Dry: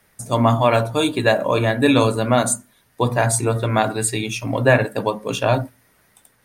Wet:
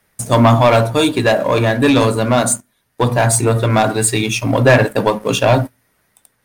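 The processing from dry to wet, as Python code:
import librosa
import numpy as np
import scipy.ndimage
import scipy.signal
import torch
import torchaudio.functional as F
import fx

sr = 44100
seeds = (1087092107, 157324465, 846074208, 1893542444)

y = fx.leveller(x, sr, passes=2)
y = fx.rider(y, sr, range_db=10, speed_s=2.0)
y = y * librosa.db_to_amplitude(-1.0)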